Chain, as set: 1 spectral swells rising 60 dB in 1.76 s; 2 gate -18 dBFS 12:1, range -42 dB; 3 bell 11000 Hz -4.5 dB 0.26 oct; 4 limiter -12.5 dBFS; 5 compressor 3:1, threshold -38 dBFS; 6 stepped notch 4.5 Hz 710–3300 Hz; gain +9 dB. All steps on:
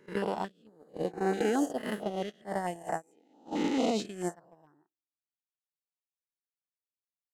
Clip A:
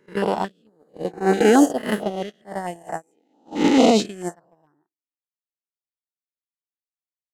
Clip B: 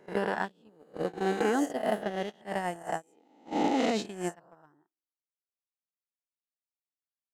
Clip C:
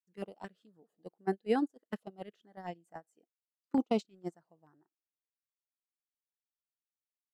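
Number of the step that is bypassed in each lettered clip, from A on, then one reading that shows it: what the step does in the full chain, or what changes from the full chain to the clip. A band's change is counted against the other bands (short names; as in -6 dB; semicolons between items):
5, mean gain reduction 7.5 dB; 6, loudness change +1.5 LU; 1, 4 kHz band -3.5 dB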